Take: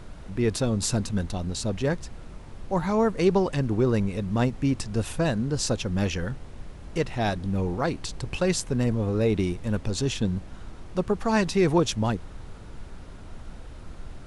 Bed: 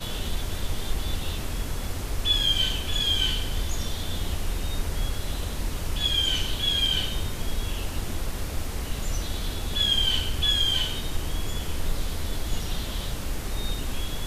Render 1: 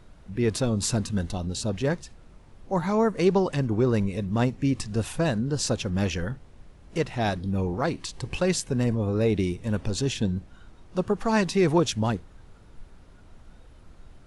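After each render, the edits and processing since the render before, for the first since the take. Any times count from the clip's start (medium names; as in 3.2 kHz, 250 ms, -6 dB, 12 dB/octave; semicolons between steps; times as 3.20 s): noise print and reduce 9 dB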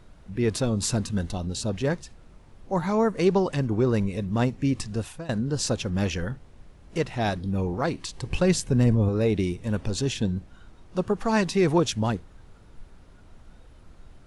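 4.87–5.29 s: fade out, to -21 dB; 8.30–9.09 s: bass shelf 230 Hz +7.5 dB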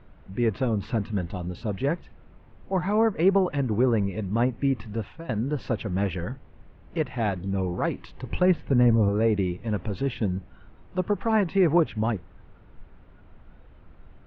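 low-pass that closes with the level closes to 2 kHz, closed at -18 dBFS; low-pass 2.9 kHz 24 dB/octave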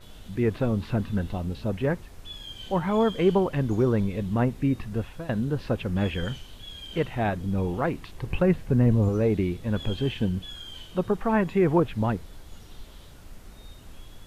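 add bed -18 dB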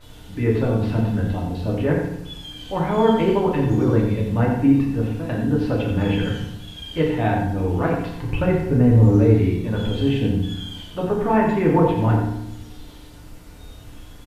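delay 89 ms -7.5 dB; FDN reverb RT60 0.81 s, low-frequency decay 1.5×, high-frequency decay 0.7×, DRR -2 dB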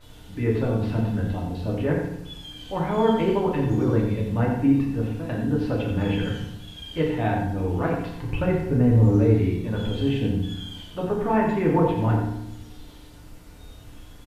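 trim -3.5 dB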